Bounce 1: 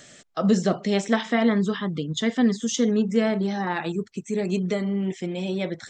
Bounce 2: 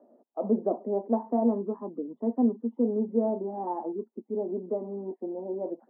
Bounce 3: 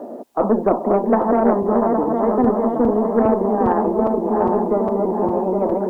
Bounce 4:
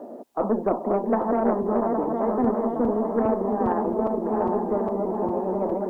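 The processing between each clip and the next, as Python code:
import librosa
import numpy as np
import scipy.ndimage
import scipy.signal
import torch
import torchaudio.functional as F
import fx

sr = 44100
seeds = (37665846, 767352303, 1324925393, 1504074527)

y1 = scipy.signal.sosfilt(scipy.signal.cheby1(4, 1.0, [230.0, 960.0], 'bandpass', fs=sr, output='sos'), x)
y1 = y1 * librosa.db_to_amplitude(-2.5)
y2 = fx.reverse_delay_fb(y1, sr, ms=407, feedback_pct=64, wet_db=-4.5)
y2 = fx.cheby_harmonics(y2, sr, harmonics=(4,), levels_db=(-36,), full_scale_db=-12.0)
y2 = fx.spectral_comp(y2, sr, ratio=2.0)
y2 = y2 * librosa.db_to_amplitude(8.0)
y3 = y2 + 10.0 ** (-12.0 / 20.0) * np.pad(y2, (int(1081 * sr / 1000.0), 0))[:len(y2)]
y3 = y3 * librosa.db_to_amplitude(-6.5)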